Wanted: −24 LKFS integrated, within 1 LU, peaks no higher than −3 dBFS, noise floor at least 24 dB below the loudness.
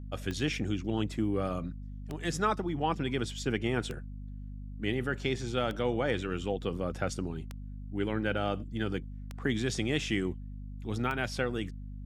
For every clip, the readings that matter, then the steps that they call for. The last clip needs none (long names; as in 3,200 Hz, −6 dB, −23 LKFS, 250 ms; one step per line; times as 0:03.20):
number of clicks 7; mains hum 50 Hz; hum harmonics up to 250 Hz; level of the hum −39 dBFS; integrated loudness −33.0 LKFS; sample peak −15.0 dBFS; target loudness −24.0 LKFS
→ click removal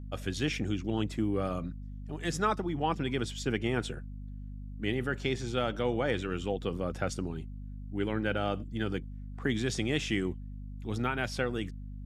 number of clicks 0; mains hum 50 Hz; hum harmonics up to 250 Hz; level of the hum −39 dBFS
→ hum removal 50 Hz, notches 5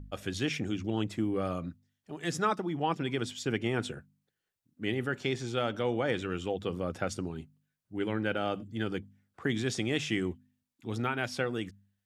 mains hum none found; integrated loudness −33.0 LKFS; sample peak −15.5 dBFS; target loudness −24.0 LKFS
→ level +9 dB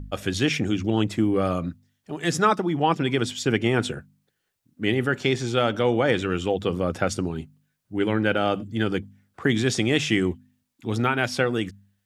integrated loudness −24.5 LKFS; sample peak −6.5 dBFS; background noise floor −77 dBFS